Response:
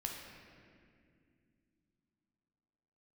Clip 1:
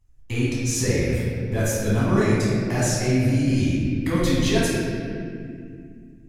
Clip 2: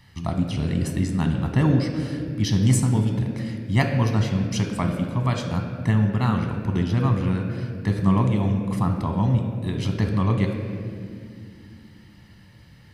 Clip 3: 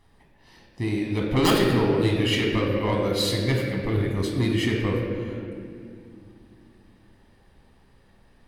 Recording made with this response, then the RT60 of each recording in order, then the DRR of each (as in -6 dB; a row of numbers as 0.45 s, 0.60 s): 3; 2.3 s, 2.3 s, 2.3 s; -8.0 dB, 3.5 dB, -0.5 dB